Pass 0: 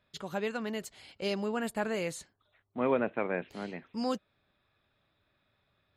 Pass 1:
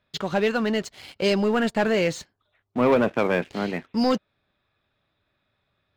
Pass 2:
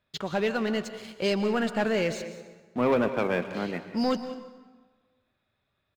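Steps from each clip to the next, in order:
LPF 6200 Hz 24 dB/oct; sample leveller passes 2; gain +5 dB
echo 0.19 s -17 dB; plate-style reverb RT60 1.4 s, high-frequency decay 0.7×, pre-delay 0.105 s, DRR 12 dB; gain -4.5 dB

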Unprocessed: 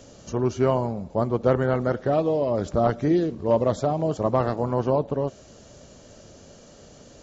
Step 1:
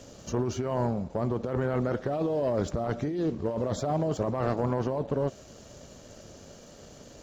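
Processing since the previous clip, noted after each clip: negative-ratio compressor -25 dBFS, ratio -1; sample leveller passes 1; gain -6 dB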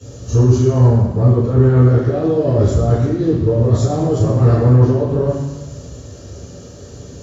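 reverb RT60 1.0 s, pre-delay 3 ms, DRR -18 dB; gain -8 dB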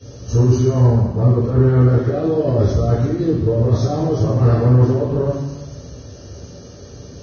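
gain -2 dB; Vorbis 16 kbps 16000 Hz

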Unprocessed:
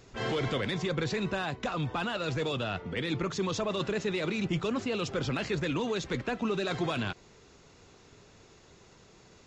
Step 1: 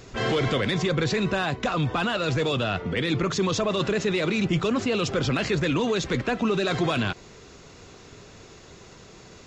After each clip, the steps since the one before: notch 870 Hz, Q 16; in parallel at 0 dB: limiter -30 dBFS, peak gain reduction 10.5 dB; on the sum: gain +3.5 dB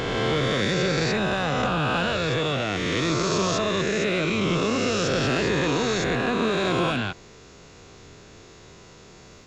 spectral swells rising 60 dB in 2.76 s; gain -4 dB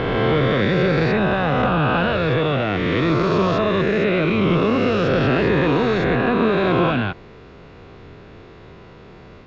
air absorption 360 m; gain +7 dB

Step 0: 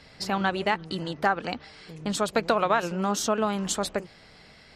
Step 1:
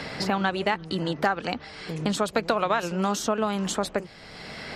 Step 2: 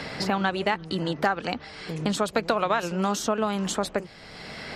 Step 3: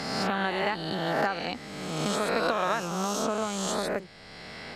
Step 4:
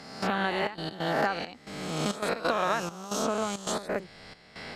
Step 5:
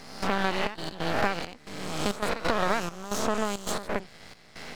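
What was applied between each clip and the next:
three-band squash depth 70%
nothing audible
spectral swells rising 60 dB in 1.52 s; gain -6.5 dB
step gate "..xxxx.x.xxxx" 135 bpm -12 dB
half-wave rectifier; gain +4 dB

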